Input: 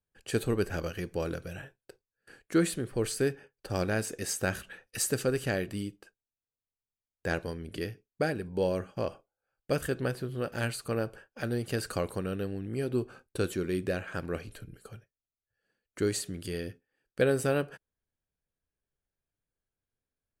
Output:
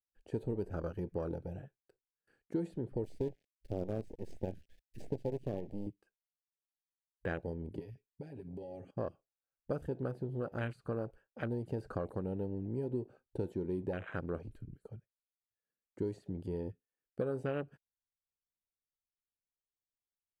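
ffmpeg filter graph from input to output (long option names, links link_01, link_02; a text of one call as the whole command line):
ffmpeg -i in.wav -filter_complex "[0:a]asettb=1/sr,asplit=3[link_01][link_02][link_03];[link_01]atrim=end=3.044[link_04];[link_02]atrim=start=3.04:end=5.87,asetpts=PTS-STARTPTS,afade=type=in:duration=0.004:curve=qsin,afade=type=out:start_time=2.826:duration=0.004:curve=qsin,acrusher=bits=5:dc=4:mix=0:aa=0.000001,asuperstop=centerf=1100:order=4:qfactor=0.84[link_05];[link_03]atrim=start=5.866[link_06];[link_04][link_05]acrossfade=duration=0.004:curve1=hsin:curve2=qsin[link_07];[link_07][link_06]acrossfade=duration=0.004:curve1=qsin:curve2=hsin,asettb=1/sr,asplit=3[link_08][link_09][link_10];[link_08]atrim=end=7.794[link_11];[link_09]atrim=start=7.79:end=8.91,asetpts=PTS-STARTPTS,afade=type=in:duration=0.004:curve=qsin,afade=type=out:start_time=1.116:duration=0.004:curve=qsin,highshelf=frequency=1700:width_type=q:width=1.5:gain=8.5,aecho=1:1:7.4:0.92,atrim=end_sample=49392,acompressor=threshold=-40dB:ratio=12:attack=3.2:release=140:knee=1:detection=peak[link_12];[link_10]atrim=start=8.906[link_13];[link_11][link_12]acrossfade=duration=0.004:curve1=hsin:curve2=qsin[link_14];[link_14][link_13]acrossfade=duration=0.004:curve1=qsin:curve2=hsin,acrossover=split=2300|6000[link_15][link_16][link_17];[link_15]acompressor=threshold=-32dB:ratio=4[link_18];[link_16]acompressor=threshold=-45dB:ratio=4[link_19];[link_17]acompressor=threshold=-52dB:ratio=4[link_20];[link_18][link_19][link_20]amix=inputs=3:normalize=0,highshelf=frequency=2400:gain=-7.5,afwtdn=0.00794,volume=-1dB" out.wav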